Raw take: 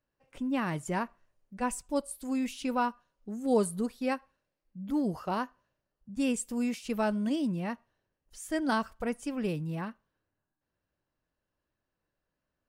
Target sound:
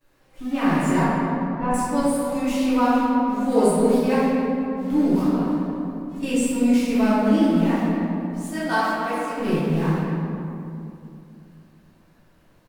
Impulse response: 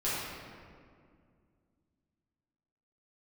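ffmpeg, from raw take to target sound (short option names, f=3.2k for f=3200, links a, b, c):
-filter_complex "[0:a]aeval=exprs='val(0)+0.5*0.0106*sgn(val(0))':c=same,asettb=1/sr,asplit=3[a][b][c];[a]atrim=end=8.504[d];[b]atrim=start=8.5:end=9.37,asetpts=PTS-STARTPTS,afade=t=in:d=0.004:c=qsin,afade=t=out:st=0.866:d=0.004:c=qsin,highpass=460[e];[c]atrim=start=9.366[f];[d][e]acrossfade=d=0.004:c1=hsin:c2=qsin[g];[g][f]acrossfade=d=0.004:c1=qsin:c2=hsin,agate=range=-33dB:threshold=-34dB:ratio=3:detection=peak,asettb=1/sr,asplit=3[h][i][j];[h]atrim=end=1.014[k];[i]atrim=start=1.01:end=1.74,asetpts=PTS-STARTPTS,afade=t=in:d=0.004:c=qsin,afade=t=out:st=0.726:d=0.004:c=qsin,lowpass=2k[l];[j]atrim=start=1.736[m];[k][l]acrossfade=d=0.004:c1=hsin:c2=qsin[n];[n][m]acrossfade=d=0.004:c1=qsin:c2=hsin,asettb=1/sr,asplit=3[o][p][q];[o]atrim=end=5.274[r];[p]atrim=start=5.27:end=6.23,asetpts=PTS-STARTPTS,afade=t=in:d=0.004:c=qsin,afade=t=out:st=0.956:d=0.004:c=qsin,acompressor=threshold=-41dB:ratio=6[s];[q]atrim=start=6.226[t];[r][s]acrossfade=d=0.004:c1=hsin:c2=qsin[u];[u][t]acrossfade=d=0.004:c1=qsin:c2=hsin,asplit=2[v][w];[w]adelay=273,lowpass=f=1.5k:p=1,volume=-8dB,asplit=2[x][y];[y]adelay=273,lowpass=f=1.5k:p=1,volume=0.51,asplit=2[z][aa];[aa]adelay=273,lowpass=f=1.5k:p=1,volume=0.51,asplit=2[ab][ac];[ac]adelay=273,lowpass=f=1.5k:p=1,volume=0.51,asplit=2[ad][ae];[ae]adelay=273,lowpass=f=1.5k:p=1,volume=0.51,asplit=2[af][ag];[ag]adelay=273,lowpass=f=1.5k:p=1,volume=0.51[ah];[v][x][z][ab][ad][af][ah]amix=inputs=7:normalize=0[ai];[1:a]atrim=start_sample=2205,asetrate=38808,aresample=44100[aj];[ai][aj]afir=irnorm=-1:irlink=0"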